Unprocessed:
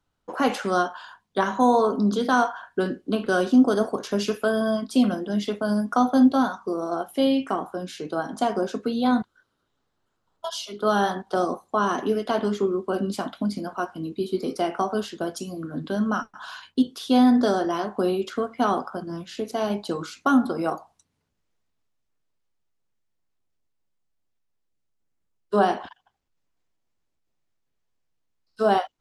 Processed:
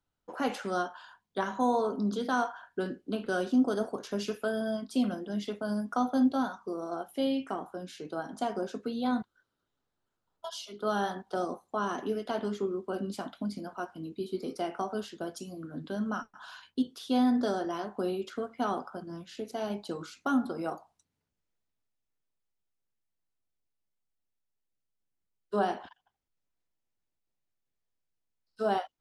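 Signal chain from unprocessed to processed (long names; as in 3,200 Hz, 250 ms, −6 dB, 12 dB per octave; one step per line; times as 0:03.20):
notch filter 1,100 Hz, Q 20
level −8.5 dB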